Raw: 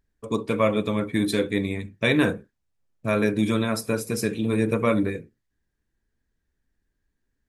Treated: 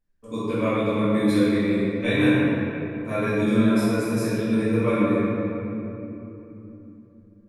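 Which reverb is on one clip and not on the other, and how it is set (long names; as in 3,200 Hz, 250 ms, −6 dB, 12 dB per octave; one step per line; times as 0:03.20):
rectangular room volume 160 cubic metres, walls hard, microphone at 2 metres
level −13 dB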